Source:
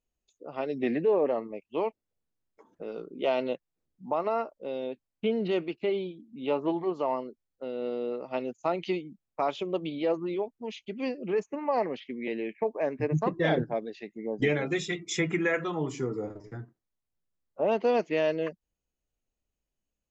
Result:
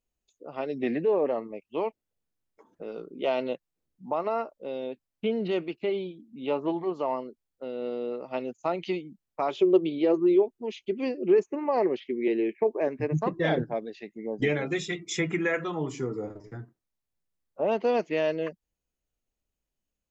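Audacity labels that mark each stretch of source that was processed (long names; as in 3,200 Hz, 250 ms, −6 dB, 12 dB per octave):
9.500000	12.880000	parametric band 370 Hz +13.5 dB 0.38 octaves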